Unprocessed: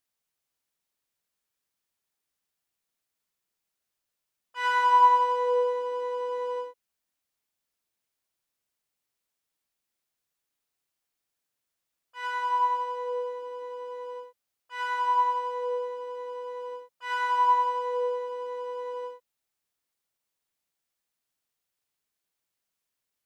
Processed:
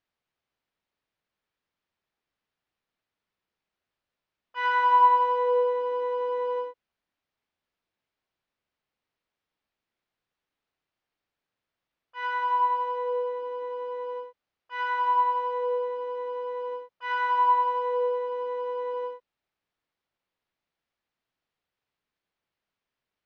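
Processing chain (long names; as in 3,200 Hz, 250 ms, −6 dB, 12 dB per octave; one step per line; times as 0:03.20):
in parallel at −2 dB: downward compressor, threshold −32 dBFS, peak gain reduction 16 dB
on the sum: high-frequency loss of the air 240 metres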